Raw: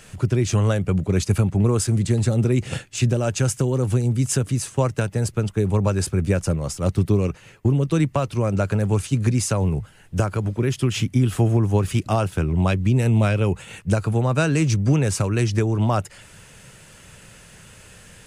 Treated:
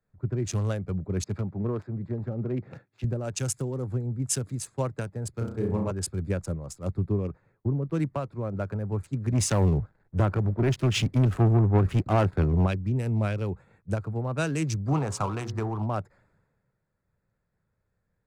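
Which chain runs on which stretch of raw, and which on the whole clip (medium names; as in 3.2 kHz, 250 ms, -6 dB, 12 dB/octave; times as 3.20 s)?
1.24–3.04 s: self-modulated delay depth 0.11 ms + band-pass 110–4100 Hz
5.33–5.91 s: high-pass 54 Hz + flutter echo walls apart 5.8 m, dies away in 0.78 s
9.32–12.66 s: low-pass 3.5 kHz 6 dB/octave + waveshaping leveller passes 2
14.88–15.82 s: low-pass 8.1 kHz + high-order bell 950 Hz +12.5 dB 1.1 oct + de-hum 59.69 Hz, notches 37
whole clip: local Wiener filter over 15 samples; three bands expanded up and down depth 70%; trim -8 dB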